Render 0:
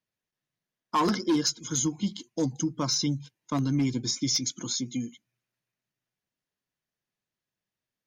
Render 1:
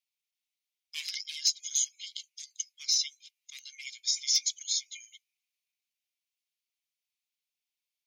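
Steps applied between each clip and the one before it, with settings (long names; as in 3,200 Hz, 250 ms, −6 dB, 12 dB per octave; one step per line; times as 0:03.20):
Chebyshev high-pass filter 2,200 Hz, order 5
level +2 dB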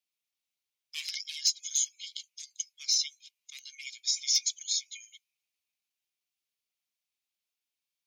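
frequency shifter +37 Hz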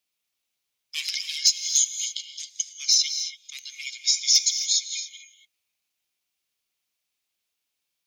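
reverb whose tail is shaped and stops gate 300 ms rising, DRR 8.5 dB
level +7.5 dB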